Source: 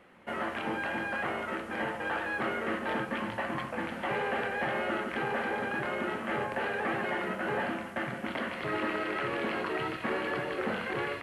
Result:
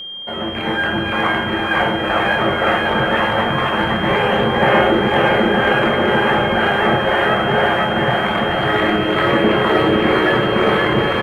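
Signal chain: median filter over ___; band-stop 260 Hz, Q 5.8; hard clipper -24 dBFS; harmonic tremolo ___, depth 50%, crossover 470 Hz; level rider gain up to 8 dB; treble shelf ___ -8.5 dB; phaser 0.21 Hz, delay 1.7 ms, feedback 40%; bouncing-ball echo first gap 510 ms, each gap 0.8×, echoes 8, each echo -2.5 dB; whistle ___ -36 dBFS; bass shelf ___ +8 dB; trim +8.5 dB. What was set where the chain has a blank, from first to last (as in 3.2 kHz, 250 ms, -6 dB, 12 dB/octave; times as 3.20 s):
5 samples, 2 Hz, 2.6 kHz, 3.2 kHz, 61 Hz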